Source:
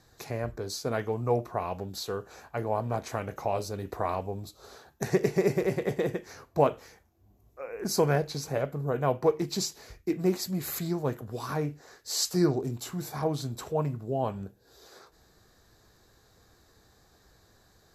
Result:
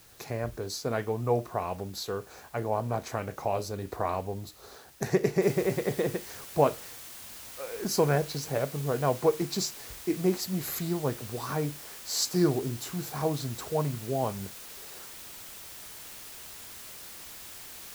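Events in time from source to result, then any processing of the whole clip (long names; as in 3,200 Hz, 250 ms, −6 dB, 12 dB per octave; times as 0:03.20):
0:05.42: noise floor change −57 dB −45 dB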